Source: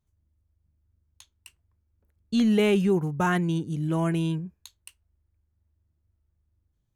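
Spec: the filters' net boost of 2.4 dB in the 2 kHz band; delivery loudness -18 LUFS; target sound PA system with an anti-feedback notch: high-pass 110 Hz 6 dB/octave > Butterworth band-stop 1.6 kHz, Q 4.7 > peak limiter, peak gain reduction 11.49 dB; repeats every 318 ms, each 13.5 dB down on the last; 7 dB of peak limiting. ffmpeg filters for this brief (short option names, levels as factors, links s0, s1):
-af "equalizer=f=2000:t=o:g=6,alimiter=limit=0.112:level=0:latency=1,highpass=f=110:p=1,asuperstop=centerf=1600:order=8:qfactor=4.7,aecho=1:1:318|636:0.211|0.0444,volume=7.94,alimiter=limit=0.316:level=0:latency=1"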